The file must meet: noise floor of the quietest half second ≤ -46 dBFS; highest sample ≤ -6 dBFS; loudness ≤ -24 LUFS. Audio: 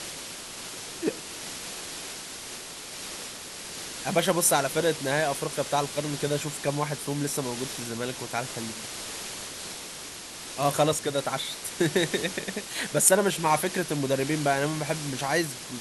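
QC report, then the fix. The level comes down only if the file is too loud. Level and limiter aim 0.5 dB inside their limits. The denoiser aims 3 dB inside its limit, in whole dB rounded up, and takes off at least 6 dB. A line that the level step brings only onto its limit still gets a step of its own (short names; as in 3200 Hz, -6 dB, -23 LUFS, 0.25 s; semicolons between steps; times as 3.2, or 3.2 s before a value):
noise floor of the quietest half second -40 dBFS: fail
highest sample -4.5 dBFS: fail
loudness -28.0 LUFS: OK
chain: denoiser 9 dB, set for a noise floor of -40 dBFS; limiter -6.5 dBFS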